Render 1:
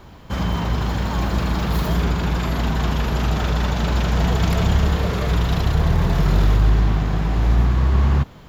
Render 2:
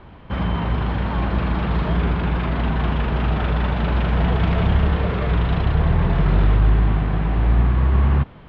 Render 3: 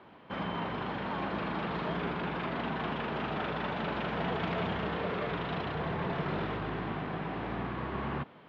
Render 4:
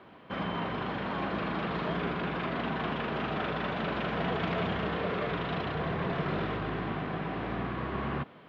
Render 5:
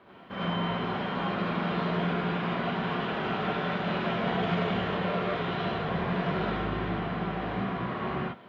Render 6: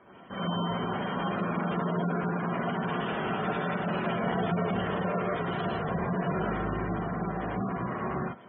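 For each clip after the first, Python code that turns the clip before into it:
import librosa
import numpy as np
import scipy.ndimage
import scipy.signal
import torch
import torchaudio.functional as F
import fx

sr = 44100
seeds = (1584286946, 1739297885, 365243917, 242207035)

y1 = scipy.signal.sosfilt(scipy.signal.butter(4, 3100.0, 'lowpass', fs=sr, output='sos'), x)
y2 = scipy.signal.sosfilt(scipy.signal.butter(2, 240.0, 'highpass', fs=sr, output='sos'), y1)
y2 = y2 * librosa.db_to_amplitude(-7.0)
y3 = fx.notch(y2, sr, hz=880.0, q=12.0)
y3 = y3 * librosa.db_to_amplitude(2.0)
y4 = fx.rev_gated(y3, sr, seeds[0], gate_ms=120, shape='rising', drr_db=-5.0)
y4 = y4 * librosa.db_to_amplitude(-4.0)
y5 = fx.spec_gate(y4, sr, threshold_db=-20, keep='strong')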